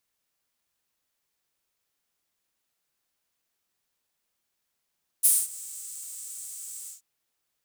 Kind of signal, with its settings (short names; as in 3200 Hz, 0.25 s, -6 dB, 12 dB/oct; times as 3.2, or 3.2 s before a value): synth patch with vibrato A4, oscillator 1 triangle, oscillator 2 level -9.5 dB, sub -11 dB, noise -17 dB, filter highpass, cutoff 7100 Hz, Q 4.6, filter envelope 0.5 oct, filter decay 0.31 s, filter sustain 35%, attack 22 ms, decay 0.22 s, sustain -22.5 dB, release 0.14 s, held 1.64 s, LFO 2.9 Hz, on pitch 47 cents